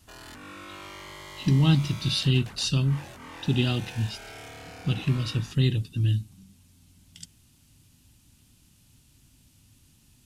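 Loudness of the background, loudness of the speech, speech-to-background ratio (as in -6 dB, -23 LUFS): -43.0 LUFS, -26.0 LUFS, 17.0 dB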